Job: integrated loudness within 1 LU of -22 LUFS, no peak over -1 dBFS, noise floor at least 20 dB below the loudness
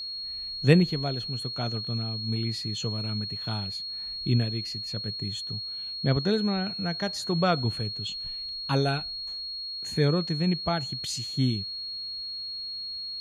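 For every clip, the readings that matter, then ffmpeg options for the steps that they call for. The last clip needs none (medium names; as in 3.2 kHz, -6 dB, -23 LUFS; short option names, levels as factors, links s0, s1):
steady tone 4.3 kHz; tone level -33 dBFS; loudness -28.5 LUFS; peak level -6.0 dBFS; loudness target -22.0 LUFS
-> -af "bandreject=f=4300:w=30"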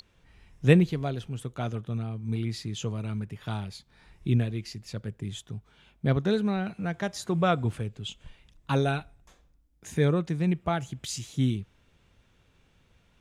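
steady tone not found; loudness -29.5 LUFS; peak level -6.5 dBFS; loudness target -22.0 LUFS
-> -af "volume=2.37,alimiter=limit=0.891:level=0:latency=1"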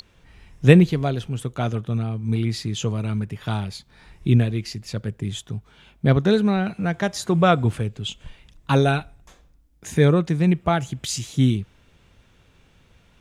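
loudness -22.0 LUFS; peak level -1.0 dBFS; noise floor -58 dBFS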